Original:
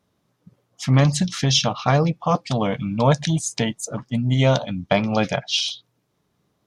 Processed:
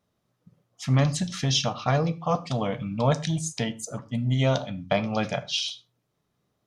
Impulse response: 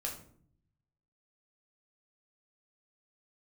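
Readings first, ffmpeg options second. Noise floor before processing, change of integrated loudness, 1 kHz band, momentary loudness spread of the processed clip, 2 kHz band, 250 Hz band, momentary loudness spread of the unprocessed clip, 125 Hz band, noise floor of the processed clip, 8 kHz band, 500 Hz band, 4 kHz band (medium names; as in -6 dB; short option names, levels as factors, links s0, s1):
-71 dBFS, -5.5 dB, -5.5 dB, 7 LU, -6.0 dB, -6.0 dB, 7 LU, -5.0 dB, -76 dBFS, -5.5 dB, -5.0 dB, -5.5 dB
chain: -filter_complex "[0:a]asplit=2[s0][s1];[1:a]atrim=start_sample=2205,atrim=end_sample=6174[s2];[s1][s2]afir=irnorm=-1:irlink=0,volume=0.422[s3];[s0][s3]amix=inputs=2:normalize=0,volume=0.398"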